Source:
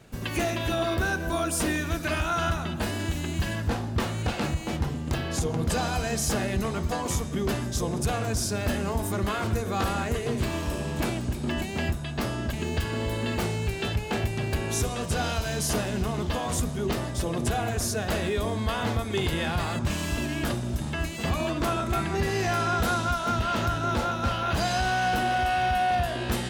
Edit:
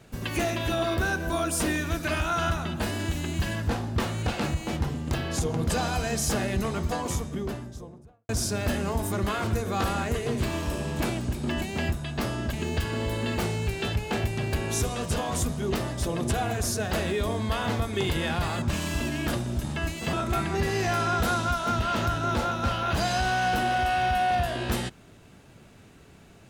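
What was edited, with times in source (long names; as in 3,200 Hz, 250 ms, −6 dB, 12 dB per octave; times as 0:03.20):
0:06.83–0:08.29: fade out and dull
0:15.16–0:16.33: remove
0:21.30–0:21.73: remove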